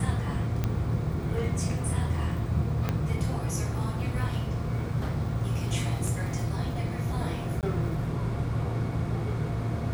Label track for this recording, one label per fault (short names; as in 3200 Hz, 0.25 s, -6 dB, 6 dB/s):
0.640000	0.640000	pop -15 dBFS
2.890000	2.890000	pop -14 dBFS
6.070000	6.070000	gap 3.7 ms
7.610000	7.630000	gap 18 ms